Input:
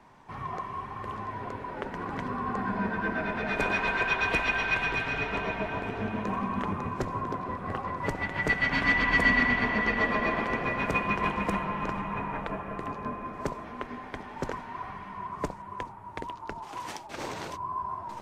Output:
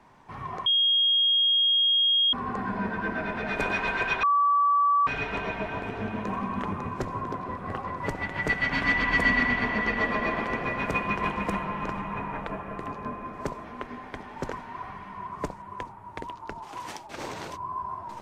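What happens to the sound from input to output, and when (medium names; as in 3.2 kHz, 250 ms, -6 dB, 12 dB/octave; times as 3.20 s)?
0.66–2.33 s: bleep 3.26 kHz -19 dBFS
4.23–5.07 s: bleep 1.15 kHz -18.5 dBFS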